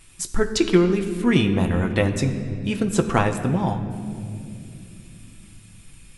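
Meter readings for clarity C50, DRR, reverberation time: 9.5 dB, 4.5 dB, 2.6 s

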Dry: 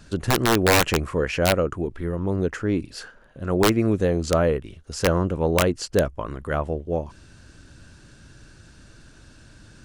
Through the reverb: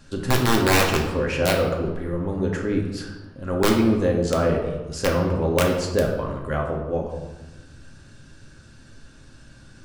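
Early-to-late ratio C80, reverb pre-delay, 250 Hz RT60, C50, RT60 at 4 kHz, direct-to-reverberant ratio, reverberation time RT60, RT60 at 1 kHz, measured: 7.0 dB, 4 ms, 1.4 s, 4.5 dB, 0.75 s, 0.0 dB, 1.1 s, 1.1 s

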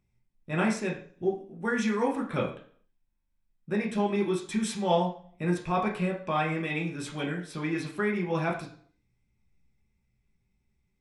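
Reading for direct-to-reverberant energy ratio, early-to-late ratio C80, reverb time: −3.0 dB, 12.0 dB, 0.50 s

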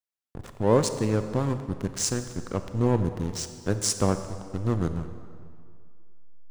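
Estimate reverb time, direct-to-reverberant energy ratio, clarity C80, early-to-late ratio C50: 2.2 s, 9.0 dB, 10.5 dB, 9.5 dB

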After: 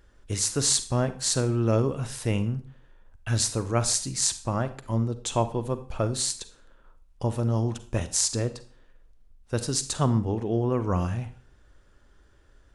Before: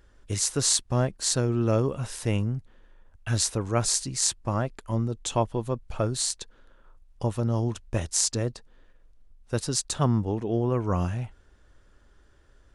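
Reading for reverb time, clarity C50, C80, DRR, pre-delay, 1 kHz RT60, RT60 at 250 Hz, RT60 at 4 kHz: 0.45 s, 14.0 dB, 18.0 dB, 12.0 dB, 36 ms, 0.40 s, 0.45 s, 0.40 s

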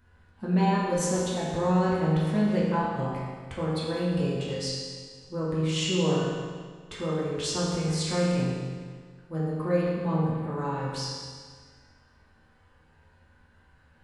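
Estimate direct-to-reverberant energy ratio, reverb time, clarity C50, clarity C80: −8.5 dB, 1.7 s, −1.5 dB, 0.5 dB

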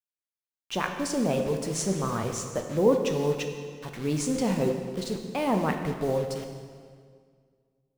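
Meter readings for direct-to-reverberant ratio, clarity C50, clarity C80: 4.0 dB, 6.0 dB, 7.0 dB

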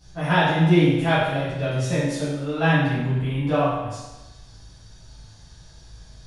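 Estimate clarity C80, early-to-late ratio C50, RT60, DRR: 2.0 dB, −1.0 dB, 1.1 s, −12.0 dB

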